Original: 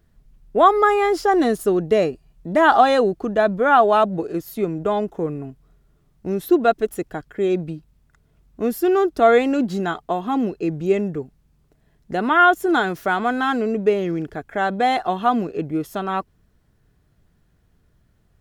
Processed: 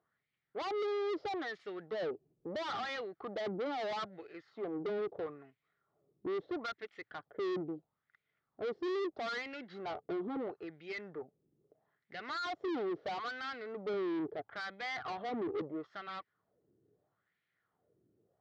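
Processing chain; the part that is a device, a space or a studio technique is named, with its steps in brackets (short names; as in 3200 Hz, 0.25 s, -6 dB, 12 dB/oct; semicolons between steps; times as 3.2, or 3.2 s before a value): wah-wah guitar rig (wah 0.76 Hz 340–2300 Hz, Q 3.7; tube stage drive 37 dB, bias 0.35; speaker cabinet 100–4400 Hz, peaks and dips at 110 Hz +6 dB, 240 Hz -3 dB, 670 Hz -3 dB, 980 Hz -7 dB, 1600 Hz -6 dB, 2600 Hz -9 dB); gain +4 dB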